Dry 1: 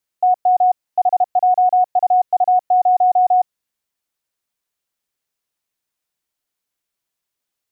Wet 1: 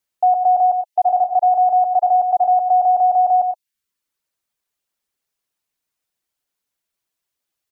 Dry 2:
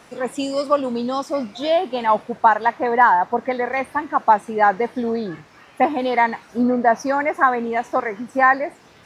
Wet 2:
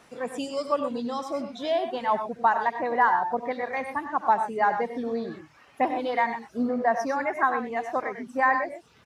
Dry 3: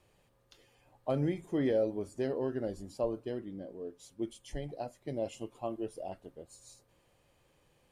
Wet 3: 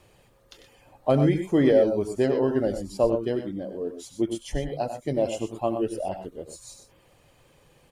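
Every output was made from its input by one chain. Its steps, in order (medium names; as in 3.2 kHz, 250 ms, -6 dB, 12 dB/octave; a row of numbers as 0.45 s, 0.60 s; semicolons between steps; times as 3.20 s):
reverb removal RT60 0.52 s; multi-tap echo 68/96/122 ms -18.5/-10/-11.5 dB; peak normalisation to -9 dBFS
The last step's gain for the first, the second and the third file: +0.5 dB, -7.5 dB, +11.0 dB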